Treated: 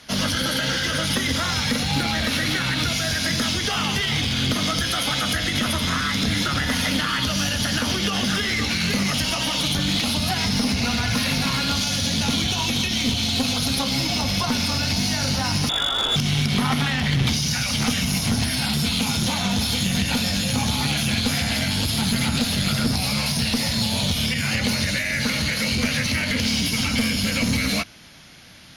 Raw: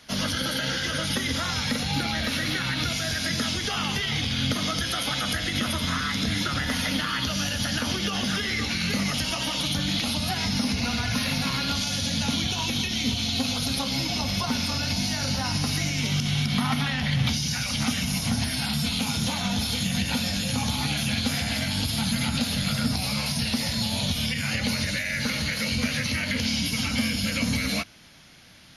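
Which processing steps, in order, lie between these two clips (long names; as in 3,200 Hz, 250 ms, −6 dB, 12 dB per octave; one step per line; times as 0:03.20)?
0:15.69–0:16.16: voice inversion scrambler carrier 3,600 Hz
asymmetric clip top −25 dBFS
level +5 dB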